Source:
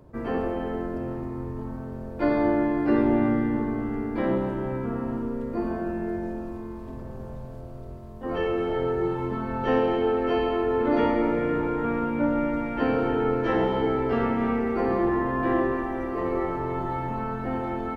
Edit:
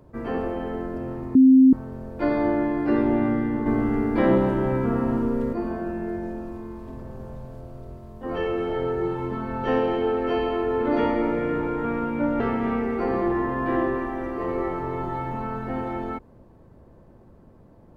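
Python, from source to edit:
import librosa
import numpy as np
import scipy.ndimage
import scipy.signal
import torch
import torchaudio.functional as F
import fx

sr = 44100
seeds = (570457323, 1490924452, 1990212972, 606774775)

y = fx.edit(x, sr, fx.bleep(start_s=1.35, length_s=0.38, hz=262.0, db=-9.5),
    fx.clip_gain(start_s=3.66, length_s=1.87, db=6.0),
    fx.cut(start_s=12.4, length_s=1.77), tone=tone)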